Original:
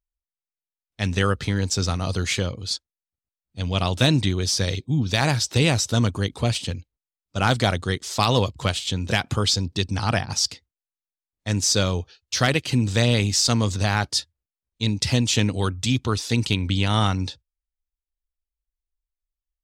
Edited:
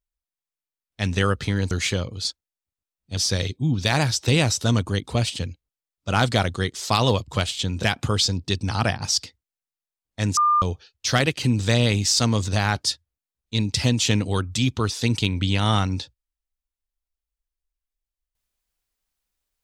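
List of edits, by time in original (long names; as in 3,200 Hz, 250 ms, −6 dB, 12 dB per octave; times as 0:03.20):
0:01.71–0:02.17: remove
0:03.63–0:04.45: remove
0:11.65–0:11.90: beep over 1,200 Hz −15 dBFS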